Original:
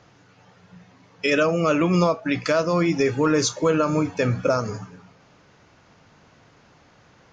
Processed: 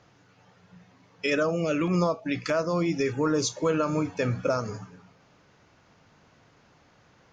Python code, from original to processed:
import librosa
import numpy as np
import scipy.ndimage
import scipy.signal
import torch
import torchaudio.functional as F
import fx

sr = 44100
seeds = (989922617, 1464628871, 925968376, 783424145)

y = fx.filter_lfo_notch(x, sr, shape='saw_down', hz=1.6, low_hz=610.0, high_hz=4600.0, q=1.3, at=(1.35, 3.54), fade=0.02)
y = F.gain(torch.from_numpy(y), -5.0).numpy()